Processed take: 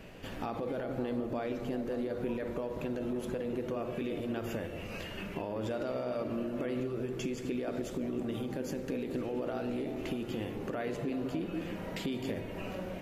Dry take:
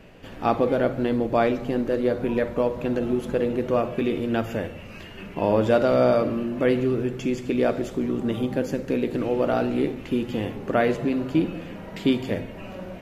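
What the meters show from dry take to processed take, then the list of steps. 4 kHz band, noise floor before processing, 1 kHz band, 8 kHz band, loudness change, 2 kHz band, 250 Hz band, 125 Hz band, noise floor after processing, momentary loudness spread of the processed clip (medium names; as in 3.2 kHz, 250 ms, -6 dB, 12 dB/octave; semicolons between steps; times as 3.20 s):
-8.5 dB, -40 dBFS, -14.0 dB, no reading, -12.5 dB, -11.5 dB, -11.0 dB, -10.5 dB, -42 dBFS, 4 LU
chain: peak limiter -18 dBFS, peak gain reduction 10.5 dB; compression 3:1, threshold -34 dBFS, peak gain reduction 9 dB; treble shelf 5 kHz +5.5 dB; on a send: repeats whose band climbs or falls 187 ms, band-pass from 320 Hz, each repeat 0.7 oct, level -5 dB; on the sum: trim -1.5 dB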